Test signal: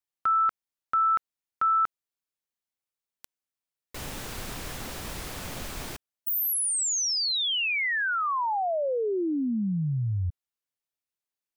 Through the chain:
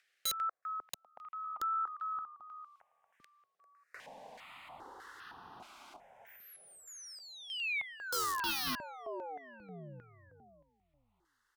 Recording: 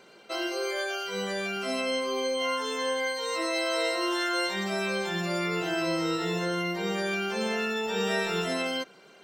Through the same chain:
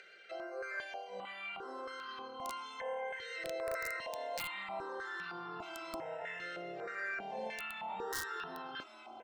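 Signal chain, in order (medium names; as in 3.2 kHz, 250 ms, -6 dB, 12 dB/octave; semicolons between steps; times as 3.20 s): upward compressor, threshold -35 dBFS; frequency-shifting echo 396 ms, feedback 51%, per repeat -36 Hz, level -9.5 dB; LFO band-pass square 1.6 Hz 770–1700 Hz; integer overflow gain 26.5 dB; stepped phaser 2.5 Hz 260–2200 Hz; trim -1 dB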